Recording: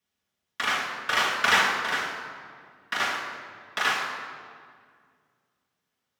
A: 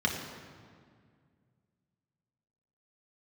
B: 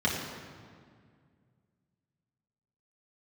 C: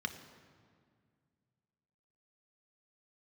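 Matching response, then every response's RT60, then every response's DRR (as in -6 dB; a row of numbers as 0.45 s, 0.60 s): B; 2.0 s, 2.0 s, 2.0 s; -1.0 dB, -5.5 dB, 6.5 dB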